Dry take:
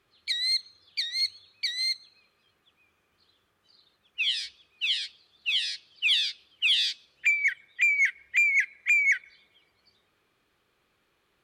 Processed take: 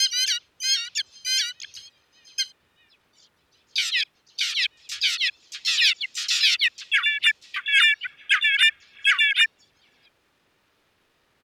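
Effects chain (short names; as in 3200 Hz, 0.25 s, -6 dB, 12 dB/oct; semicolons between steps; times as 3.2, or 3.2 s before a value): slices in reverse order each 0.126 s, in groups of 5; harmoniser -5 st -1 dB, +3 st -1 dB, +7 st -2 dB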